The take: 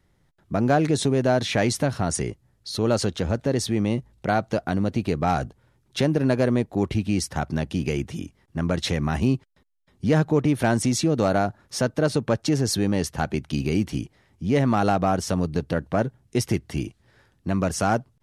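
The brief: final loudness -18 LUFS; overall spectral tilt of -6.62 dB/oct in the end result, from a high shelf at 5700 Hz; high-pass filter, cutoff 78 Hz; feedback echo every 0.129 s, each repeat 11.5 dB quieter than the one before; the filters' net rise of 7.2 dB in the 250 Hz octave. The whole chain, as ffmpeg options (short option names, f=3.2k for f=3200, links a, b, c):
-af "highpass=78,equalizer=f=250:t=o:g=9,highshelf=f=5.7k:g=3.5,aecho=1:1:129|258|387:0.266|0.0718|0.0194,volume=1.5dB"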